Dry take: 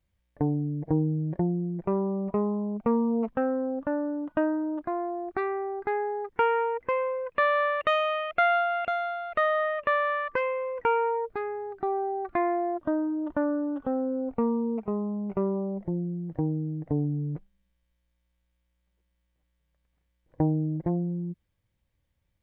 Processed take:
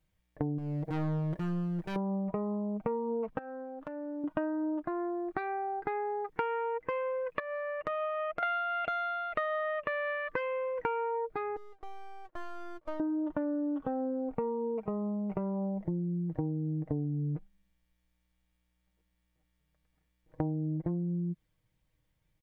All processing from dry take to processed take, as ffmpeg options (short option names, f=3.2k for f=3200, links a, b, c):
-filter_complex "[0:a]asettb=1/sr,asplit=3[a][b][c];[a]atrim=end=0.584[d];[b]atrim=start=0.58:end=1.96,asetpts=PTS-STARTPTS,afade=t=in:d=0.004:c=qsin,afade=t=out:st=1.376:d=0.004:c=qsin,highshelf=f=3.3k:g=9.5,volume=32.5dB,asoftclip=hard,volume=-32.5dB[e];[c]atrim=start=1.956[f];[d][e]acrossfade=d=0.004:c1=hsin:c2=qsin[g];[g][f]acrossfade=d=0.004:c1=qsin:c2=hsin,asettb=1/sr,asplit=3[h][i][j];[h]atrim=end=3.384[k];[i]atrim=start=3.38:end=4.24,asetpts=PTS-STARTPTS,afade=t=in:d=0.004:c=qsin,afade=t=out:st=0.856:d=0.004:c=qsin,equalizer=f=93:w=0.36:g=-14,acompressor=threshold=-37dB:ratio=12:attack=3.2:release=140:knee=1:detection=peak[l];[j]atrim=start=4.236[m];[k][l]acrossfade=d=0.004:c1=hsin:c2=qsin[n];[n][m]acrossfade=d=0.004:c1=qsin:c2=hsin,asettb=1/sr,asplit=3[o][p][q];[o]atrim=end=7.394[r];[p]atrim=start=7.39:end=8.43,asetpts=PTS-STARTPTS,afade=t=in:d=0.004:c=qsin,afade=t=out:st=1.036:d=0.004:c=qsin,lowpass=1.5k,bandreject=f=50:t=h:w=6,bandreject=f=100:t=h:w=6,bandreject=f=150:t=h:w=6,bandreject=f=200:t=h:w=6,bandreject=f=250:t=h:w=6,bandreject=f=300:t=h:w=6,bandreject=f=350:t=h:w=6,acompressor=threshold=-32dB:ratio=4:attack=3.2:release=140:knee=1:detection=peak[s];[q]atrim=start=8.426[t];[r][s]acrossfade=d=0.004:c1=hsin:c2=qsin[u];[u][t]acrossfade=d=0.004:c1=qsin:c2=hsin,asettb=1/sr,asplit=3[v][w][x];[v]atrim=end=11.564[y];[w]atrim=start=11.56:end=13,asetpts=PTS-STARTPTS,afade=t=in:d=0.004:c=qsin,afade=t=out:st=1.436:d=0.004:c=qsin,bandpass=f=530:t=q:w=5,aeval=exprs='max(val(0),0)':c=same[z];[x]atrim=start=12.996[aa];[y][z]acrossfade=d=0.004:c1=hsin:c2=qsin[ab];[ab][aa]acrossfade=d=0.004:c1=qsin:c2=hsin,aecho=1:1:6.4:0.57,acompressor=threshold=-30dB:ratio=6"